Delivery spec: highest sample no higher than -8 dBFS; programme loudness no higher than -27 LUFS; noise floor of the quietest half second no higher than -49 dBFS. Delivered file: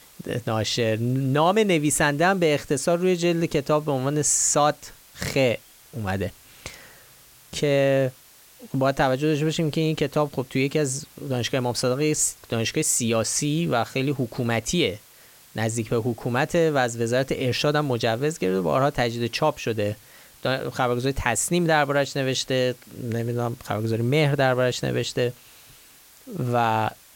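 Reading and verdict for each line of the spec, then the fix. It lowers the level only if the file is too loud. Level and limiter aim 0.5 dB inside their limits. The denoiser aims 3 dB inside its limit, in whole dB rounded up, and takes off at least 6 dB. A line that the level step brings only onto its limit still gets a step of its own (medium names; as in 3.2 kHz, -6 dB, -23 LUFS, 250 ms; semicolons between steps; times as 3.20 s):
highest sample -5.5 dBFS: fail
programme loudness -23.5 LUFS: fail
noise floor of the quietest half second -51 dBFS: pass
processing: trim -4 dB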